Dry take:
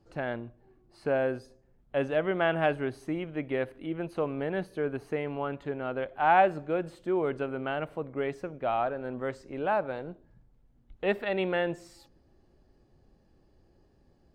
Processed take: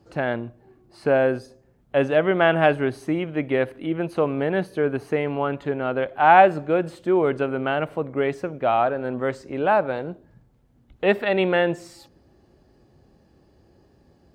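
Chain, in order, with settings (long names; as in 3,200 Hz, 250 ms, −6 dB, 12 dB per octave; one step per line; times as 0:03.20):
high-pass filter 64 Hz
level +8.5 dB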